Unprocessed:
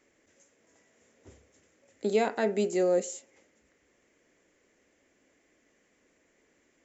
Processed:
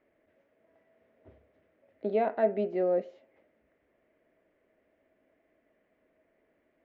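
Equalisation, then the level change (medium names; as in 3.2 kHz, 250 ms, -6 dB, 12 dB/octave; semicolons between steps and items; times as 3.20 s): Gaussian low-pass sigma 3.2 samples; peaking EQ 640 Hz +13 dB 0.2 oct; -3.5 dB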